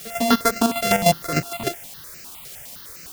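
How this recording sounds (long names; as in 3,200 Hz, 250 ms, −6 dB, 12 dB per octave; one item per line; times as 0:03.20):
a buzz of ramps at a fixed pitch in blocks of 64 samples
chopped level 6.6 Hz, depth 65%, duty 35%
a quantiser's noise floor 8 bits, dither triangular
notches that jump at a steady rate 9.8 Hz 260–3,400 Hz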